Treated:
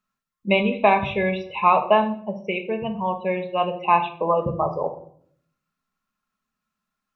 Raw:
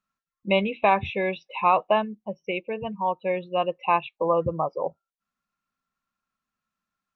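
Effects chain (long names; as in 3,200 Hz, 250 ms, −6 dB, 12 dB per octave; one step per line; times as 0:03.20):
rectangular room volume 860 cubic metres, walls furnished, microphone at 1.4 metres
level +2 dB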